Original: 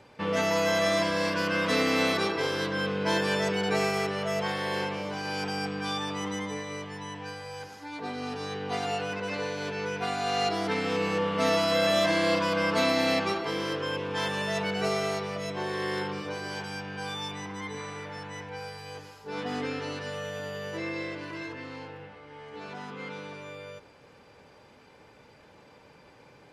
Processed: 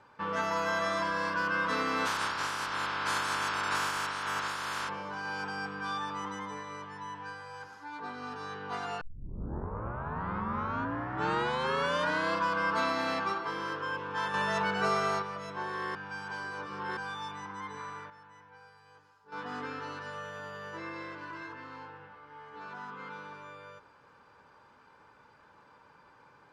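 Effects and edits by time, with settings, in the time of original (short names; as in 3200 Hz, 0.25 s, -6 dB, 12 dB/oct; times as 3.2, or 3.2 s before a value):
2.05–4.88 spectral limiter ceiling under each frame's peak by 29 dB
9.01 tape start 3.33 s
14.34–15.22 gain +5 dB
15.95–16.97 reverse
17.66–19.76 dip -11.5 dB, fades 0.44 s logarithmic
whole clip: Bessel low-pass 9700 Hz; band shelf 1200 Hz +11 dB 1.1 oct; gain -9 dB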